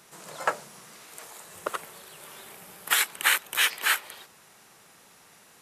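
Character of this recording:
background noise floor −56 dBFS
spectral slope +0.5 dB per octave

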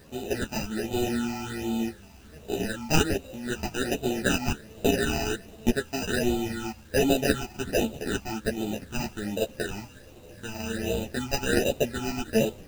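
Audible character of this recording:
aliases and images of a low sample rate 1,100 Hz, jitter 0%
phaser sweep stages 8, 1.3 Hz, lowest notch 470–1,700 Hz
a quantiser's noise floor 10 bits, dither none
a shimmering, thickened sound

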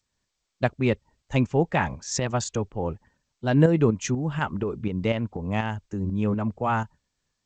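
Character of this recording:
tremolo saw up 4.1 Hz, depth 55%
G.722

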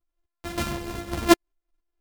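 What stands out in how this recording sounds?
a buzz of ramps at a fixed pitch in blocks of 128 samples
tremolo saw up 3.9 Hz, depth 40%
a shimmering, thickened sound

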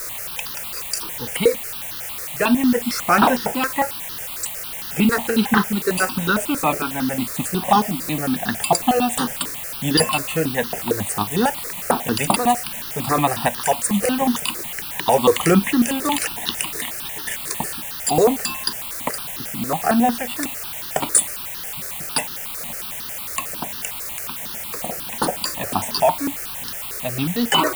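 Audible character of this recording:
tremolo saw up 0.89 Hz, depth 45%
a quantiser's noise floor 6 bits, dither triangular
notches that jump at a steady rate 11 Hz 830–2,300 Hz

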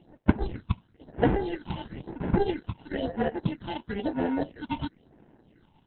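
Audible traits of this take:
aliases and images of a low sample rate 1,200 Hz, jitter 0%
phaser sweep stages 6, 1 Hz, lowest notch 450–4,500 Hz
a quantiser's noise floor 12 bits, dither none
Opus

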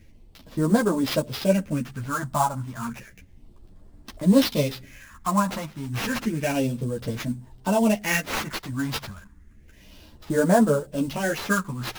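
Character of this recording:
phaser sweep stages 4, 0.31 Hz, lowest notch 430–2,600 Hz
aliases and images of a low sample rate 8,600 Hz, jitter 20%
a shimmering, thickened sound

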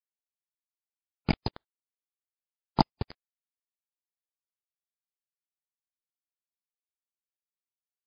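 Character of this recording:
phaser sweep stages 6, 0.8 Hz, lowest notch 220–2,500 Hz
a quantiser's noise floor 6 bits, dither none
MP3

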